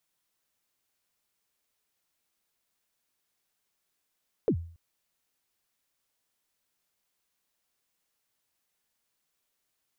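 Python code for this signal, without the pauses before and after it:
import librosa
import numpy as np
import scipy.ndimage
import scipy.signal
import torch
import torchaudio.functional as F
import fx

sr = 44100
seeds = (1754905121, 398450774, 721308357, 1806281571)

y = fx.drum_kick(sr, seeds[0], length_s=0.28, level_db=-18.5, start_hz=520.0, end_hz=84.0, sweep_ms=77.0, decay_s=0.48, click=False)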